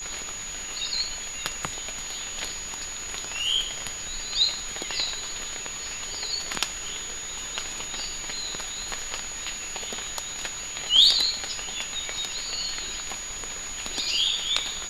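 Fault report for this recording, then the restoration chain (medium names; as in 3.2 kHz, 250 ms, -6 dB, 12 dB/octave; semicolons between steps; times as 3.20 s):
whine 6.8 kHz -34 dBFS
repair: band-stop 6.8 kHz, Q 30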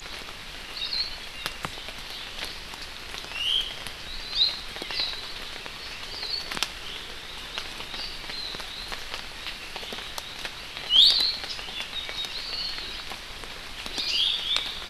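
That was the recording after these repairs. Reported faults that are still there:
nothing left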